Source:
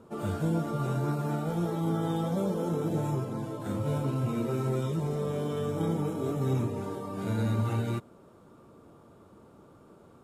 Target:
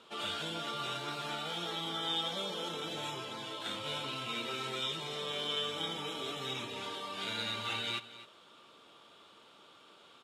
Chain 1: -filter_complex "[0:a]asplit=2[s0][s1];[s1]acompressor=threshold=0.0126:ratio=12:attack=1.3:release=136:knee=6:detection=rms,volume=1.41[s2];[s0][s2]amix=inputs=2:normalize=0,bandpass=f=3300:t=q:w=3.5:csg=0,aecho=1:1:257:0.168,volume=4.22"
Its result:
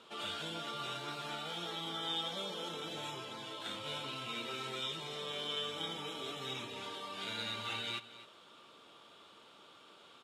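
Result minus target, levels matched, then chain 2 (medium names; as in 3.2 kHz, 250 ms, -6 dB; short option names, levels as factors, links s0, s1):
compression: peak gain reduction +9.5 dB
-filter_complex "[0:a]asplit=2[s0][s1];[s1]acompressor=threshold=0.0422:ratio=12:attack=1.3:release=136:knee=6:detection=rms,volume=1.41[s2];[s0][s2]amix=inputs=2:normalize=0,bandpass=f=3300:t=q:w=3.5:csg=0,aecho=1:1:257:0.168,volume=4.22"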